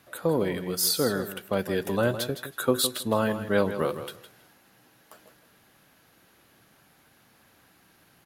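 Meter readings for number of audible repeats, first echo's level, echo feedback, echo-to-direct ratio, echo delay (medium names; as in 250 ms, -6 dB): 2, -11.0 dB, 16%, -11.0 dB, 161 ms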